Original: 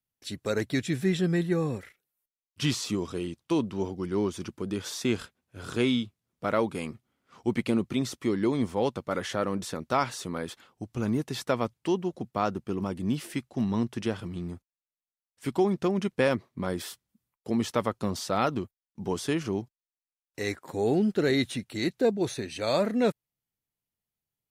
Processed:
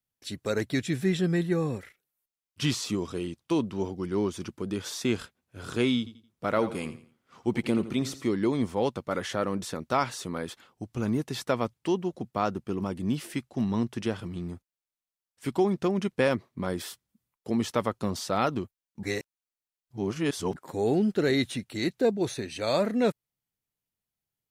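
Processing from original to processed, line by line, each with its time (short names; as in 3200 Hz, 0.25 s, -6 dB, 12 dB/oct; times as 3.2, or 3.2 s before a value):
5.98–8.28 feedback echo 85 ms, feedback 32%, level -13.5 dB
19.03–20.56 reverse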